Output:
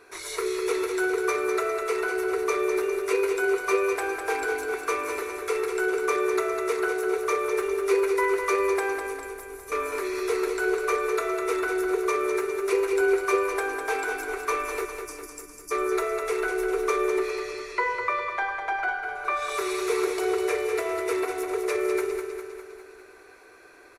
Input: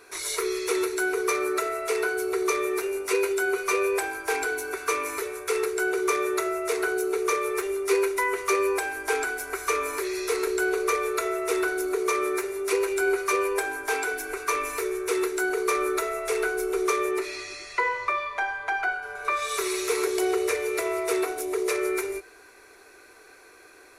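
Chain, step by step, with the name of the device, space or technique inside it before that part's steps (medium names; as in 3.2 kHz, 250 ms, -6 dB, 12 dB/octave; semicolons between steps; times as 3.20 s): 14.86–15.71 s: spectral selection erased 330–4600 Hz; behind a face mask (treble shelf 3.4 kHz -8 dB); 9.07–9.72 s: FFT filter 150 Hz 0 dB, 1.4 kHz -26 dB, 11 kHz -2 dB; feedback delay 202 ms, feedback 57%, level -6.5 dB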